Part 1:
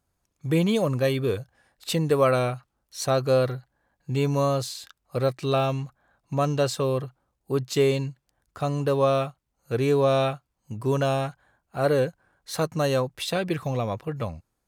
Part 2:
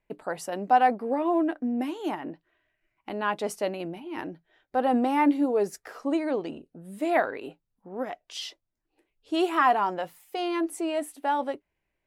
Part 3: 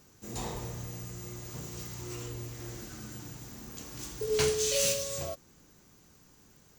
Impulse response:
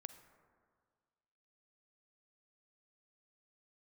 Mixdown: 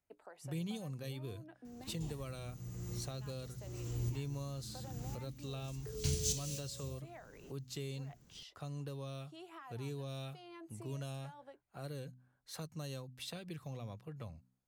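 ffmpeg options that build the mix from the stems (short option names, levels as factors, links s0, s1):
-filter_complex "[0:a]bandreject=f=63.12:t=h:w=4,bandreject=f=126.24:t=h:w=4,bandreject=f=189.36:t=h:w=4,bandreject=f=252.48:t=h:w=4,volume=0.2,asplit=2[s0][s1];[1:a]highpass=340,acompressor=threshold=0.0224:ratio=3,volume=0.168[s2];[2:a]lowshelf=f=350:g=11,adelay=1650,volume=1.33[s3];[s1]apad=whole_len=371795[s4];[s3][s4]sidechaincompress=threshold=0.00178:ratio=5:attack=6:release=570[s5];[s0][s2][s5]amix=inputs=3:normalize=0,acrossover=split=220|3000[s6][s7][s8];[s7]acompressor=threshold=0.00355:ratio=6[s9];[s6][s9][s8]amix=inputs=3:normalize=0"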